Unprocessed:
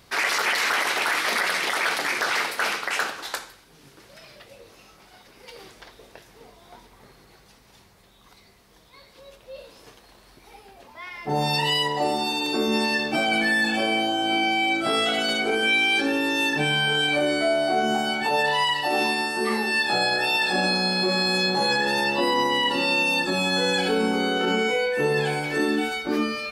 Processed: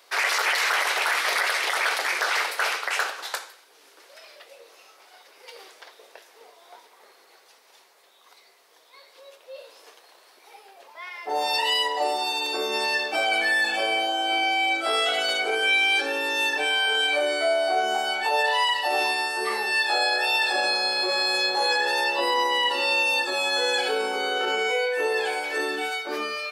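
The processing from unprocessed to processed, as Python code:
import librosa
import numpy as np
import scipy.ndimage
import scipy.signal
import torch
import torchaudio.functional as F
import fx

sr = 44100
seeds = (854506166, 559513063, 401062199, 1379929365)

y = scipy.signal.sosfilt(scipy.signal.butter(4, 430.0, 'highpass', fs=sr, output='sos'), x)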